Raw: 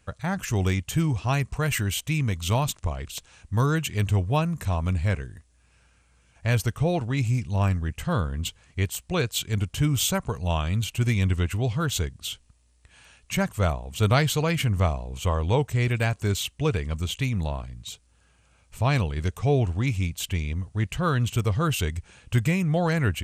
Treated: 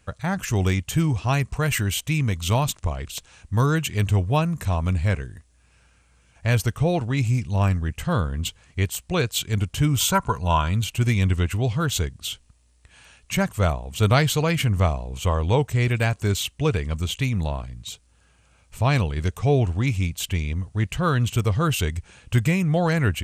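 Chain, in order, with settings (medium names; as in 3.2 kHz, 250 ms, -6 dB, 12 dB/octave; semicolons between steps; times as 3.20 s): 10.00–10.71 s: small resonant body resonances 1/1.4 kHz, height 15 dB; trim +2.5 dB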